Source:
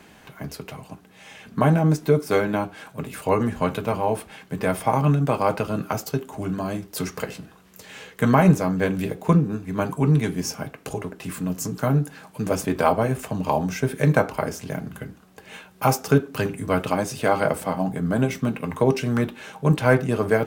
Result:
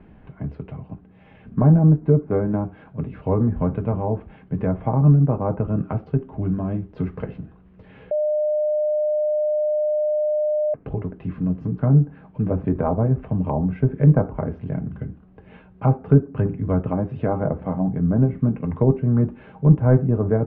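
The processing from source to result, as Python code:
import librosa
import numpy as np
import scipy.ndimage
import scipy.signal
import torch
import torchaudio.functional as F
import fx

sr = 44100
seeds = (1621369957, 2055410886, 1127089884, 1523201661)

y = fx.edit(x, sr, fx.bleep(start_s=8.11, length_s=2.63, hz=605.0, db=-14.5), tone=tone)
y = scipy.signal.sosfilt(scipy.signal.butter(4, 3100.0, 'lowpass', fs=sr, output='sos'), y)
y = fx.env_lowpass_down(y, sr, base_hz=1300.0, full_db=-18.5)
y = fx.tilt_eq(y, sr, slope=-4.5)
y = y * librosa.db_to_amplitude(-6.5)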